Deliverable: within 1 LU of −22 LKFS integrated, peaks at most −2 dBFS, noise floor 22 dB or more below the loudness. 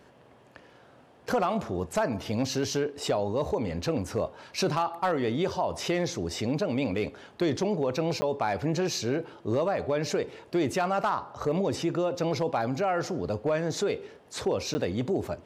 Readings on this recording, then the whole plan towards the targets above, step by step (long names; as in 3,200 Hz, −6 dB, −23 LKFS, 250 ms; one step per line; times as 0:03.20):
share of clipped samples 0.3%; peaks flattened at −18.0 dBFS; number of dropouts 2; longest dropout 10 ms; integrated loudness −29.0 LKFS; sample peak −18.0 dBFS; target loudness −22.0 LKFS
→ clipped peaks rebuilt −18 dBFS
repair the gap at 0:08.21/0:14.74, 10 ms
level +7 dB